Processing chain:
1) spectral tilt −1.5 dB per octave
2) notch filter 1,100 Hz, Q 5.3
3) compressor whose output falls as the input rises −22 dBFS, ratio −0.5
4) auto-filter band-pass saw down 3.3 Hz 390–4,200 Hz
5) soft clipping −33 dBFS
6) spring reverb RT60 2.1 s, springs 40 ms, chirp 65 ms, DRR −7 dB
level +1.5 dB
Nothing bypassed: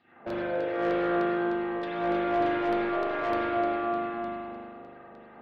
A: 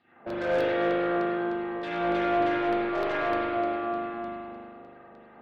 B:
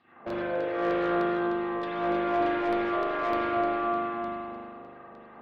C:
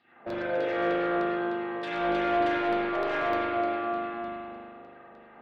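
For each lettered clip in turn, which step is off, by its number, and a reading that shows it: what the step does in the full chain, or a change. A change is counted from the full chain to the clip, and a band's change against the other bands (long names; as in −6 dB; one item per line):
3, 4 kHz band +2.0 dB
2, change in momentary loudness spread +3 LU
1, 4 kHz band +3.5 dB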